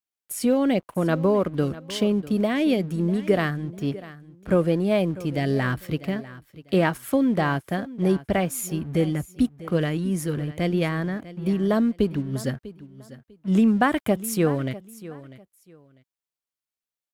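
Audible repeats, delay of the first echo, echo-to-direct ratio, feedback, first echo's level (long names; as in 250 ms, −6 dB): 2, 647 ms, −17.0 dB, 23%, −17.0 dB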